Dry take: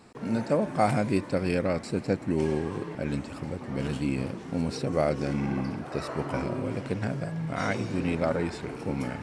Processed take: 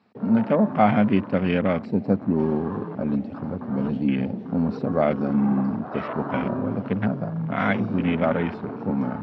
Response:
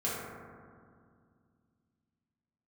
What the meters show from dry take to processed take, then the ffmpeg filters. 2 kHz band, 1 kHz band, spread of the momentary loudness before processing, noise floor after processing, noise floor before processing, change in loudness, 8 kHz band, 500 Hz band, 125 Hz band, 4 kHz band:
+4.0 dB, +5.5 dB, 7 LU, −37 dBFS, −41 dBFS, +5.5 dB, below −25 dB, +3.5 dB, +3.5 dB, can't be measured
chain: -af "acontrast=74,afwtdn=0.0251,highpass=frequency=100:width=0.5412,highpass=frequency=100:width=1.3066,equalizer=frequency=140:width_type=q:width=4:gain=-8,equalizer=frequency=210:width_type=q:width=4:gain=6,equalizer=frequency=340:width_type=q:width=4:gain=-7,equalizer=frequency=510:width_type=q:width=4:gain=-4,lowpass=frequency=4400:width=0.5412,lowpass=frequency=4400:width=1.3066"

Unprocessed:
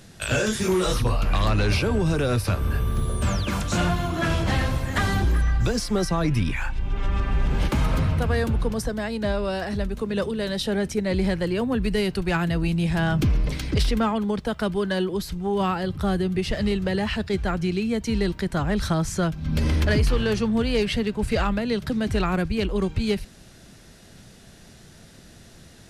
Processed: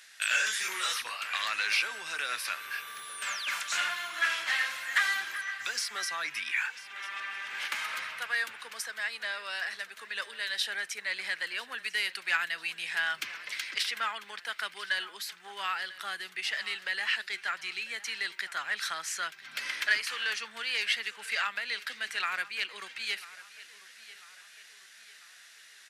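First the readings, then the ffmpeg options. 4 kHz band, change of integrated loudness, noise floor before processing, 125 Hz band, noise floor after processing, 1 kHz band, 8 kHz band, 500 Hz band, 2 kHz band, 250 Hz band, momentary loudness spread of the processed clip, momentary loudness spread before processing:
−0.5 dB, −7.5 dB, −49 dBFS, below −40 dB, −54 dBFS, −7.5 dB, −2.0 dB, −24.5 dB, +2.0 dB, below −35 dB, 12 LU, 4 LU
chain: -af "highpass=frequency=1800:width_type=q:width=2,aecho=1:1:995|1990|2985|3980:0.126|0.0579|0.0266|0.0123,volume=-2.5dB"

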